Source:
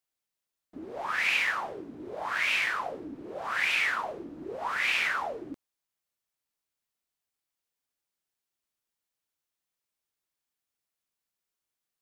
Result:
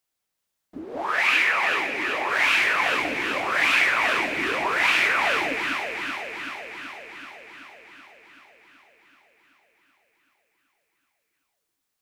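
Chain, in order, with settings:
0:00.82–0:02.30: bass and treble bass −8 dB, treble −3 dB
delay that swaps between a low-pass and a high-pass 190 ms, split 2,300 Hz, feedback 82%, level −3 dB
level +6 dB

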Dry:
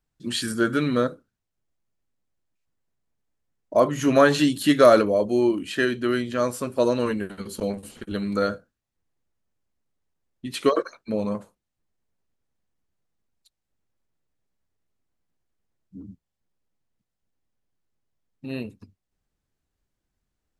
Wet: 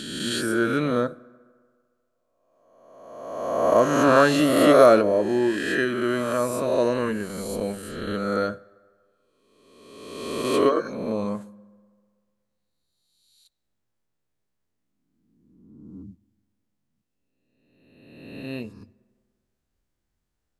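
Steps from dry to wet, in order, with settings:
peak hold with a rise ahead of every peak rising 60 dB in 1.47 s
dynamic equaliser 4,700 Hz, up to −4 dB, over −37 dBFS, Q 0.77
on a send: convolution reverb RT60 1.9 s, pre-delay 5 ms, DRR 22 dB
on the sum: level −2.5 dB

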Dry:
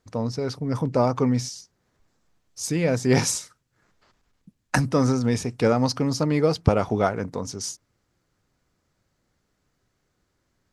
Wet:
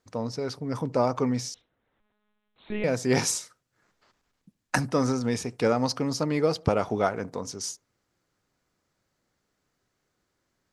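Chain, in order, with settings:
0:01.54–0:02.84: one-pitch LPC vocoder at 8 kHz 210 Hz
low-shelf EQ 150 Hz −9 dB
feedback echo with a band-pass in the loop 72 ms, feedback 43%, band-pass 620 Hz, level −23 dB
level −2 dB

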